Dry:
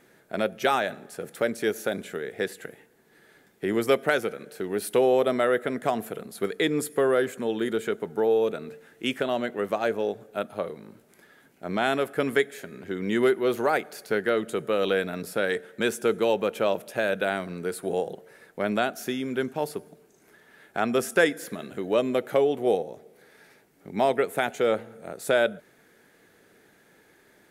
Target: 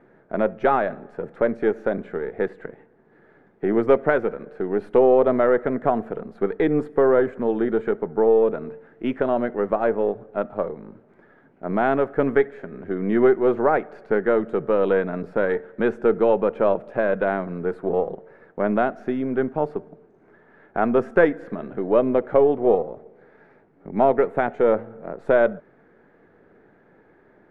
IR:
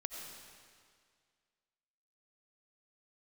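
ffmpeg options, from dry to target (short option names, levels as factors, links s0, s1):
-filter_complex "[0:a]aeval=exprs='if(lt(val(0),0),0.708*val(0),val(0))':c=same,lowpass=1400,asplit=2[s0][s1];[1:a]atrim=start_sample=2205,atrim=end_sample=3087,lowpass=2400[s2];[s1][s2]afir=irnorm=-1:irlink=0,volume=0.944[s3];[s0][s3]amix=inputs=2:normalize=0,volume=1.33"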